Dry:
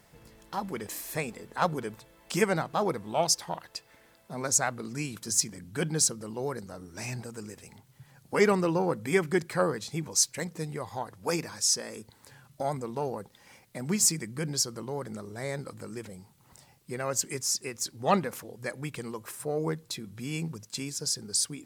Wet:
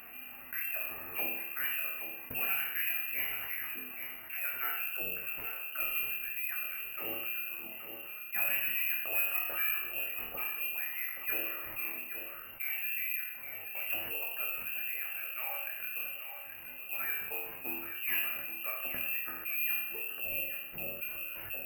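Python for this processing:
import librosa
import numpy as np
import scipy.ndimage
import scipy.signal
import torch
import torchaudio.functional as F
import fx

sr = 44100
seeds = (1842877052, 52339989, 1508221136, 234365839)

p1 = fx.highpass(x, sr, hz=320.0, slope=6)
p2 = fx.peak_eq(p1, sr, hz=730.0, db=-14.0, octaves=0.4)
p3 = fx.notch(p2, sr, hz=1900.0, q=7.1)
p4 = fx.level_steps(p3, sr, step_db=11)
p5 = p3 + (p4 * 10.0 ** (-1.0 / 20.0))
p6 = 10.0 ** (-20.0 / 20.0) * np.tanh(p5 / 10.0 ** (-20.0 / 20.0))
p7 = fx.resonator_bank(p6, sr, root=39, chord='major', decay_s=0.57)
p8 = p7 + 10.0 ** (-15.0 / 20.0) * np.pad(p7, (int(825 * sr / 1000.0), 0))[:len(p7)]
p9 = fx.freq_invert(p8, sr, carrier_hz=2900)
p10 = (np.kron(scipy.signal.resample_poly(p9, 1, 3), np.eye(3)[0]) * 3)[:len(p9)]
p11 = fx.env_flatten(p10, sr, amount_pct=50)
y = p11 * 10.0 ** (3.0 / 20.0)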